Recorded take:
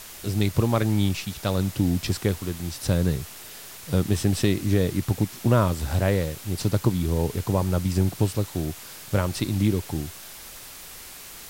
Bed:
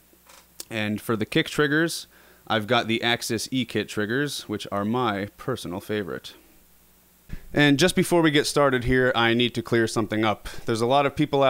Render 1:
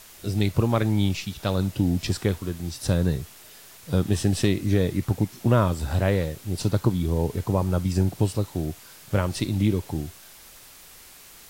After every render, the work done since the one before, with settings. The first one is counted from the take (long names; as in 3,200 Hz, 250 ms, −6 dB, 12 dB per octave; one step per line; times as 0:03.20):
noise reduction from a noise print 6 dB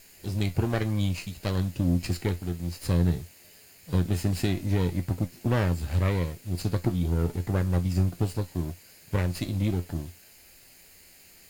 lower of the sound and its delayed copy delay 0.42 ms
tuned comb filter 87 Hz, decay 0.15 s, harmonics all, mix 70%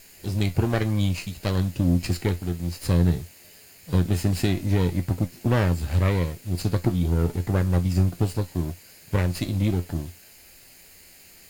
level +3.5 dB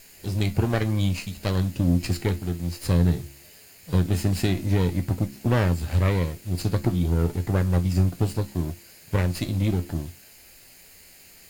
hum removal 68.86 Hz, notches 5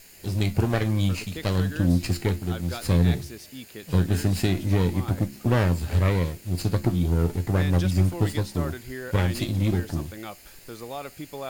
mix in bed −15.5 dB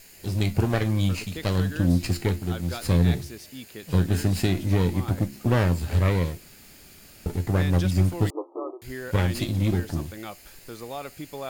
0:06.40–0:07.26: fill with room tone
0:08.30–0:08.82: linear-phase brick-wall band-pass 290–1,300 Hz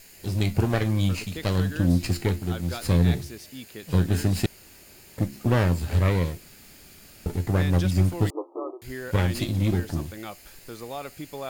0:04.46–0:05.18: fill with room tone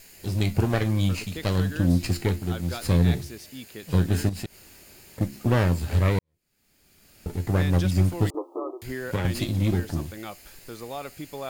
0:04.29–0:05.21: downward compressor 2 to 1, threshold −36 dBFS
0:06.19–0:07.52: fade in quadratic
0:08.34–0:09.25: multiband upward and downward compressor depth 70%